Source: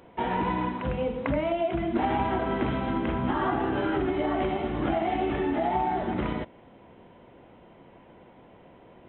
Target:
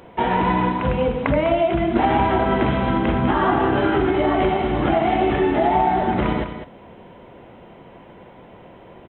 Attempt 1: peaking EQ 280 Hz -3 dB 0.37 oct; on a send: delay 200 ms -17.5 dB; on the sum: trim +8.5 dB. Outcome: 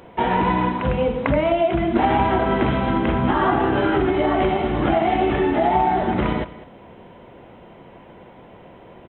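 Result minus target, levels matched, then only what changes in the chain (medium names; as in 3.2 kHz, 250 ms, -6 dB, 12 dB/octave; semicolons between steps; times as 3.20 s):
echo-to-direct -8 dB
change: delay 200 ms -9.5 dB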